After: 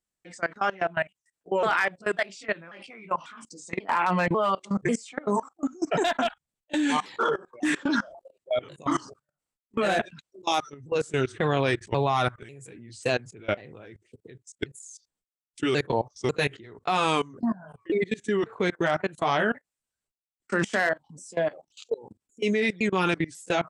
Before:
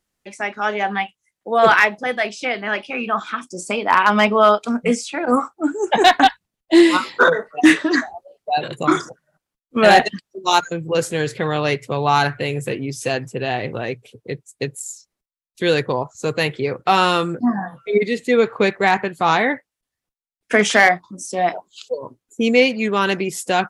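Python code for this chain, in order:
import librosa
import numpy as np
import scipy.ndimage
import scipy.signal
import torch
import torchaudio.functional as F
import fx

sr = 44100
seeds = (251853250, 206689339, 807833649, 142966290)

y = fx.pitch_ramps(x, sr, semitones=-4.0, every_ms=543)
y = fx.peak_eq(y, sr, hz=7900.0, db=8.5, octaves=0.29)
y = fx.level_steps(y, sr, step_db=22)
y = F.gain(torch.from_numpy(y), -1.5).numpy()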